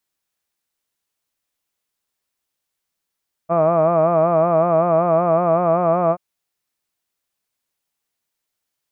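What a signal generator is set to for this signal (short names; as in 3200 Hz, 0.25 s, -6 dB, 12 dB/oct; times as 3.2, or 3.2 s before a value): formant-synthesis vowel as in hud, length 2.68 s, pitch 163 Hz, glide +1 st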